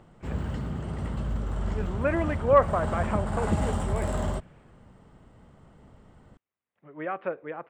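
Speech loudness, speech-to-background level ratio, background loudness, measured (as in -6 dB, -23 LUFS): -28.5 LUFS, 2.5 dB, -31.0 LUFS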